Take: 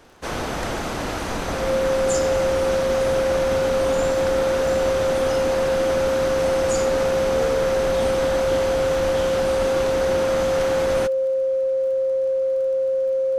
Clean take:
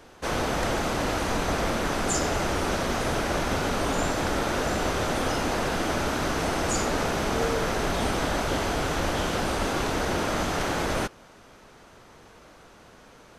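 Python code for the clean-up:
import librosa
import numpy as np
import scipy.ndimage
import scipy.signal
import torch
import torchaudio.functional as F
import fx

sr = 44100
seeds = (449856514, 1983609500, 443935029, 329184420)

y = fx.fix_declick_ar(x, sr, threshold=6.5)
y = fx.notch(y, sr, hz=530.0, q=30.0)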